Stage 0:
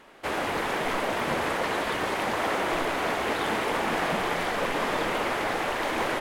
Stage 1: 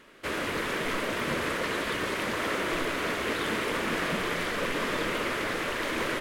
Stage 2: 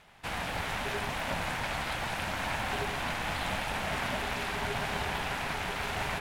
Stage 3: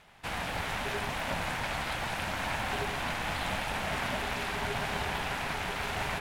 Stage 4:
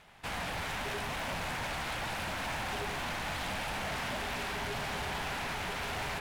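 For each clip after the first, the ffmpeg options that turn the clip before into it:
ffmpeg -i in.wav -af "equalizer=frequency=790:width=2.6:gain=-13" out.wav
ffmpeg -i in.wav -af "bandreject=frequency=61.81:width_type=h:width=4,bandreject=frequency=123.62:width_type=h:width=4,bandreject=frequency=185.43:width_type=h:width=4,bandreject=frequency=247.24:width_type=h:width=4,bandreject=frequency=309.05:width_type=h:width=4,bandreject=frequency=370.86:width_type=h:width=4,bandreject=frequency=432.67:width_type=h:width=4,bandreject=frequency=494.48:width_type=h:width=4,bandreject=frequency=556.29:width_type=h:width=4,bandreject=frequency=618.1:width_type=h:width=4,bandreject=frequency=679.91:width_type=h:width=4,bandreject=frequency=741.72:width_type=h:width=4,bandreject=frequency=803.53:width_type=h:width=4,bandreject=frequency=865.34:width_type=h:width=4,bandreject=frequency=927.15:width_type=h:width=4,bandreject=frequency=988.96:width_type=h:width=4,bandreject=frequency=1050.77:width_type=h:width=4,bandreject=frequency=1112.58:width_type=h:width=4,bandreject=frequency=1174.39:width_type=h:width=4,bandreject=frequency=1236.2:width_type=h:width=4,bandreject=frequency=1298.01:width_type=h:width=4,bandreject=frequency=1359.82:width_type=h:width=4,bandreject=frequency=1421.63:width_type=h:width=4,bandreject=frequency=1483.44:width_type=h:width=4,bandreject=frequency=1545.25:width_type=h:width=4,bandreject=frequency=1607.06:width_type=h:width=4,bandreject=frequency=1668.87:width_type=h:width=4,bandreject=frequency=1730.68:width_type=h:width=4,bandreject=frequency=1792.49:width_type=h:width=4,bandreject=frequency=1854.3:width_type=h:width=4,bandreject=frequency=1916.11:width_type=h:width=4,bandreject=frequency=1977.92:width_type=h:width=4,bandreject=frequency=2039.73:width_type=h:width=4,bandreject=frequency=2101.54:width_type=h:width=4,bandreject=frequency=2163.35:width_type=h:width=4,bandreject=frequency=2225.16:width_type=h:width=4,bandreject=frequency=2286.97:width_type=h:width=4,bandreject=frequency=2348.78:width_type=h:width=4,bandreject=frequency=2410.59:width_type=h:width=4,aeval=exprs='val(0)*sin(2*PI*410*n/s)':channel_layout=same" out.wav
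ffmpeg -i in.wav -af anull out.wav
ffmpeg -i in.wav -af "asoftclip=type=hard:threshold=-32dB" out.wav

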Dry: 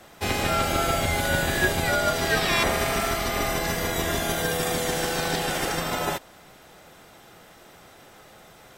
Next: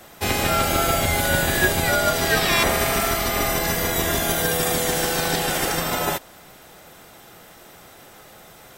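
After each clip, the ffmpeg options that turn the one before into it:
ffmpeg -i in.wav -af "highshelf=frequency=11000:gain=10.5,volume=3dB" out.wav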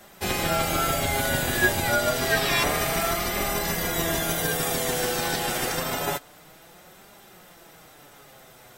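ffmpeg -i in.wav -af "flanger=delay=4.9:depth=3.8:regen=47:speed=0.28:shape=triangular" out.wav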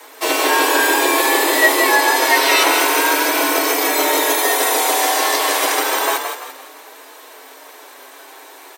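ffmpeg -i in.wav -filter_complex "[0:a]afreqshift=260,acontrast=60,asplit=6[link_01][link_02][link_03][link_04][link_05][link_06];[link_02]adelay=170,afreqshift=38,volume=-6.5dB[link_07];[link_03]adelay=340,afreqshift=76,volume=-14.7dB[link_08];[link_04]adelay=510,afreqshift=114,volume=-22.9dB[link_09];[link_05]adelay=680,afreqshift=152,volume=-31dB[link_10];[link_06]adelay=850,afreqshift=190,volume=-39.2dB[link_11];[link_01][link_07][link_08][link_09][link_10][link_11]amix=inputs=6:normalize=0,volume=2.5dB" out.wav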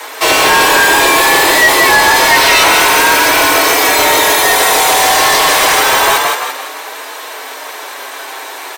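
ffmpeg -i in.wav -filter_complex "[0:a]asplit=2[link_01][link_02];[link_02]highpass=frequency=720:poles=1,volume=22dB,asoftclip=type=tanh:threshold=-1dB[link_03];[link_01][link_03]amix=inputs=2:normalize=0,lowpass=frequency=6300:poles=1,volume=-6dB" out.wav

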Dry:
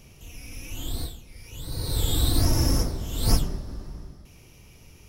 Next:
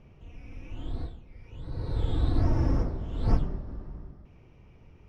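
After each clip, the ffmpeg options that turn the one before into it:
ffmpeg -i in.wav -af "lowpass=1600,volume=-2.5dB" out.wav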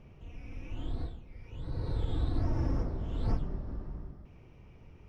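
ffmpeg -i in.wav -af "acompressor=threshold=-30dB:ratio=2" out.wav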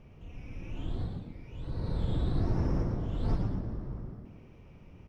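ffmpeg -i in.wav -filter_complex "[0:a]asplit=6[link_01][link_02][link_03][link_04][link_05][link_06];[link_02]adelay=116,afreqshift=79,volume=-6dB[link_07];[link_03]adelay=232,afreqshift=158,volume=-14.2dB[link_08];[link_04]adelay=348,afreqshift=237,volume=-22.4dB[link_09];[link_05]adelay=464,afreqshift=316,volume=-30.5dB[link_10];[link_06]adelay=580,afreqshift=395,volume=-38.7dB[link_11];[link_01][link_07][link_08][link_09][link_10][link_11]amix=inputs=6:normalize=0" out.wav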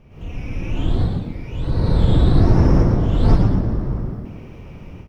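ffmpeg -i in.wav -af "dynaudnorm=framelen=100:gausssize=3:maxgain=12dB,volume=4dB" out.wav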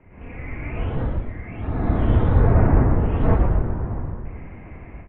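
ffmpeg -i in.wav -af "highpass=frequency=160:width_type=q:width=0.5412,highpass=frequency=160:width_type=q:width=1.307,lowpass=frequency=2500:width_type=q:width=0.5176,lowpass=frequency=2500:width_type=q:width=0.7071,lowpass=frequency=2500:width_type=q:width=1.932,afreqshift=-230,volume=4.5dB" out.wav

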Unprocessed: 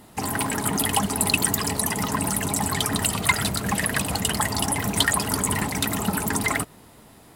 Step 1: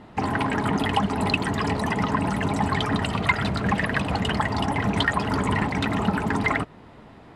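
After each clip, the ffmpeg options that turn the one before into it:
ffmpeg -i in.wav -filter_complex "[0:a]lowpass=2600,asplit=2[link_01][link_02];[link_02]alimiter=limit=-18dB:level=0:latency=1:release=370,volume=-1.5dB[link_03];[link_01][link_03]amix=inputs=2:normalize=0,volume=-1.5dB" out.wav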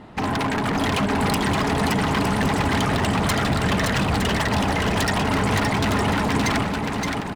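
ffmpeg -i in.wav -filter_complex "[0:a]aeval=exprs='0.0944*(abs(mod(val(0)/0.0944+3,4)-2)-1)':channel_layout=same,asplit=2[link_01][link_02];[link_02]aecho=0:1:570|912|1117|1240|1314:0.631|0.398|0.251|0.158|0.1[link_03];[link_01][link_03]amix=inputs=2:normalize=0,volume=3dB" out.wav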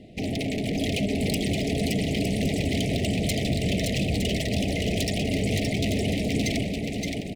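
ffmpeg -i in.wav -af "asuperstop=centerf=1200:order=12:qfactor=0.87,volume=-3dB" out.wav

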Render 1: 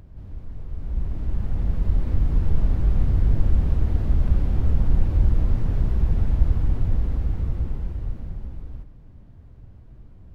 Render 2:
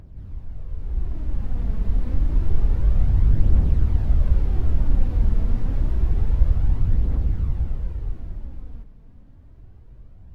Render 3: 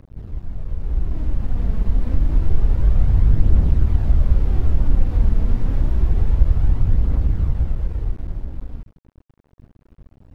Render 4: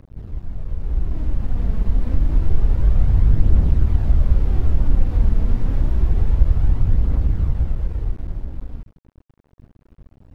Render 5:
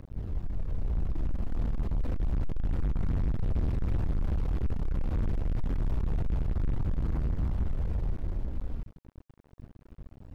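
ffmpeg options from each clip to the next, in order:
ffmpeg -i in.wav -af "aphaser=in_gain=1:out_gain=1:delay=4.7:decay=0.35:speed=0.28:type=triangular,volume=-1.5dB" out.wav
ffmpeg -i in.wav -filter_complex "[0:a]asplit=2[link_01][link_02];[link_02]acompressor=threshold=-24dB:ratio=6,volume=0.5dB[link_03];[link_01][link_03]amix=inputs=2:normalize=0,aeval=exprs='sgn(val(0))*max(abs(val(0))-0.0168,0)':channel_layout=same,volume=1dB" out.wav
ffmpeg -i in.wav -af anull out.wav
ffmpeg -i in.wav -af "aeval=exprs='(tanh(17.8*val(0)+0.2)-tanh(0.2))/17.8':channel_layout=same" out.wav

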